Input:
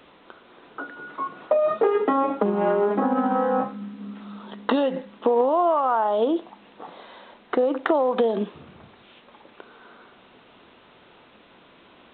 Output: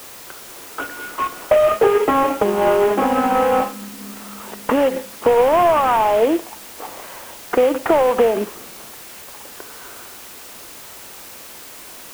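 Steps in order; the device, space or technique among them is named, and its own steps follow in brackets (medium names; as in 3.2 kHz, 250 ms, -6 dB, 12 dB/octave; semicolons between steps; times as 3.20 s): army field radio (band-pass 300–2900 Hz; CVSD coder 16 kbps; white noise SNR 19 dB); trim +7.5 dB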